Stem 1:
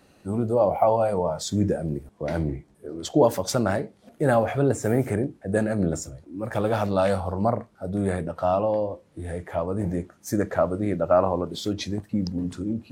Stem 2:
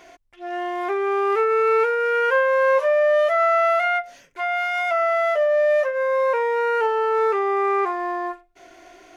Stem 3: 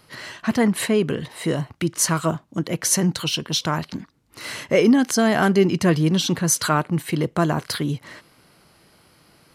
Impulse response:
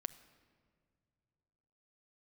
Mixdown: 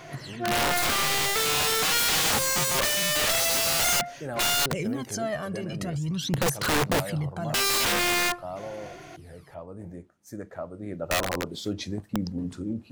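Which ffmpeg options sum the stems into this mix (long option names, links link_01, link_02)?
-filter_complex "[0:a]volume=-3.5dB,afade=type=in:start_time=10.73:duration=0.69:silence=0.298538[link_01];[1:a]asoftclip=type=hard:threshold=-17dB,volume=3dB,asplit=3[link_02][link_03][link_04];[link_02]atrim=end=4.66,asetpts=PTS-STARTPTS,afade=type=out:start_time=4.656:duration=0.004:curve=hsin[link_05];[link_03]atrim=start=4.66:end=7.54,asetpts=PTS-STARTPTS,volume=0[link_06];[link_04]atrim=start=7.54,asetpts=PTS-STARTPTS,afade=type=in:duration=0.004:curve=hsin[link_07];[link_05][link_06][link_07]concat=n=3:v=0:a=1[link_08];[2:a]equalizer=frequency=140:width_type=o:width=0.4:gain=13,alimiter=limit=-17dB:level=0:latency=1:release=33,aphaser=in_gain=1:out_gain=1:delay=1.8:decay=0.7:speed=0.45:type=sinusoidal,volume=-8.5dB[link_09];[link_01][link_08][link_09]amix=inputs=3:normalize=0,aeval=exprs='(mod(8.91*val(0)+1,2)-1)/8.91':channel_layout=same"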